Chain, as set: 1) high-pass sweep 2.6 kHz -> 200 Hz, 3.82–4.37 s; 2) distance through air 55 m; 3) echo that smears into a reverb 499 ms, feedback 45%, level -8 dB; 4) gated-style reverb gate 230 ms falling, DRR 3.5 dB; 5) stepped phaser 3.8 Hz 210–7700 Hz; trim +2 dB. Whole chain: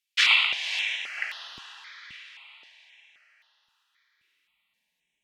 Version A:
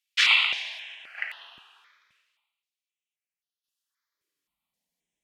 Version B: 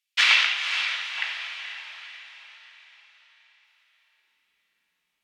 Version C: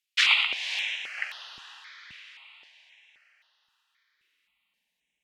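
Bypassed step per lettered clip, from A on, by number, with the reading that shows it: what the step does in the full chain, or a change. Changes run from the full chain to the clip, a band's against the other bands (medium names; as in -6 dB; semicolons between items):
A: 3, momentary loudness spread change -4 LU; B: 5, momentary loudness spread change -1 LU; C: 4, momentary loudness spread change -1 LU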